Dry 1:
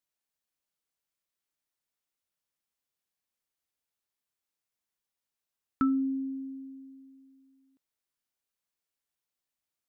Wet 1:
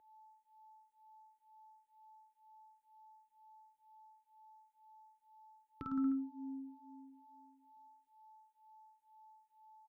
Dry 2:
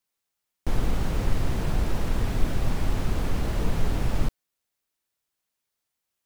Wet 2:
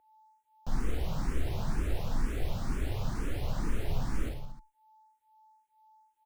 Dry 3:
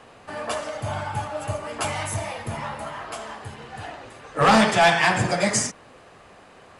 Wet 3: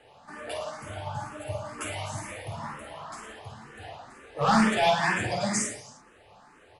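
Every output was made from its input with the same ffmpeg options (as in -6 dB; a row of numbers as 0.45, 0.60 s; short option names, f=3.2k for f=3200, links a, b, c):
-filter_complex "[0:a]aecho=1:1:50|105|165.5|232|305.3:0.631|0.398|0.251|0.158|0.1,aeval=exprs='val(0)+0.00251*sin(2*PI*870*n/s)':c=same,asplit=2[a][b];[b]afreqshift=2.1[c];[a][c]amix=inputs=2:normalize=1,volume=-6dB"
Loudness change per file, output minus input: -9.5, -6.5, -5.5 LU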